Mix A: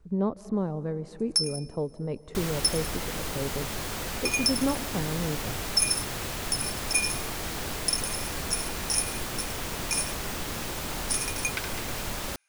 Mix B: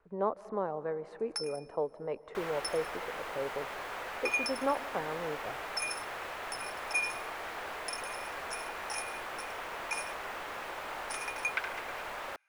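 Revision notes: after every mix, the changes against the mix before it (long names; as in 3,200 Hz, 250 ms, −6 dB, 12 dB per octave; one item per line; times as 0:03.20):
speech +4.5 dB
first sound +3.5 dB
master: add three-way crossover with the lows and the highs turned down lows −23 dB, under 480 Hz, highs −19 dB, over 2,500 Hz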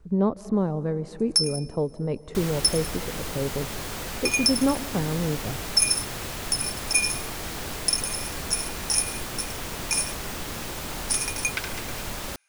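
master: remove three-way crossover with the lows and the highs turned down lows −23 dB, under 480 Hz, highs −19 dB, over 2,500 Hz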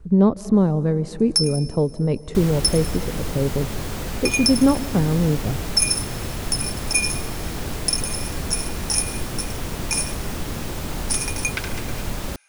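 speech: add high-shelf EQ 2,000 Hz +9.5 dB
first sound: send +9.5 dB
master: add low-shelf EQ 430 Hz +9.5 dB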